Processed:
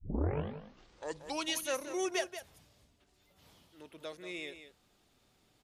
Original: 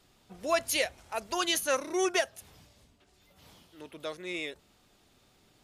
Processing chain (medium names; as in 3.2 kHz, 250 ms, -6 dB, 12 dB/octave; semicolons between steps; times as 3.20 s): tape start-up on the opening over 1.58 s; dynamic bell 1.3 kHz, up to -4 dB, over -45 dBFS, Q 2.1; on a send: delay 181 ms -11 dB; on the sum: trim -6 dB